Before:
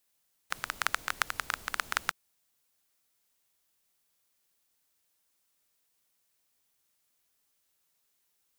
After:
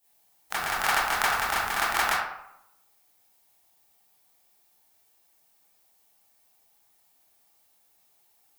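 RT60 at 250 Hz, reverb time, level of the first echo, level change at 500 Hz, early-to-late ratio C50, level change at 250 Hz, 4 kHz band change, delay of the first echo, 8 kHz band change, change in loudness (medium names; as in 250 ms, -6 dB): 0.80 s, 0.80 s, no echo, +13.0 dB, 0.5 dB, +10.0 dB, +7.0 dB, no echo, +7.0 dB, +8.0 dB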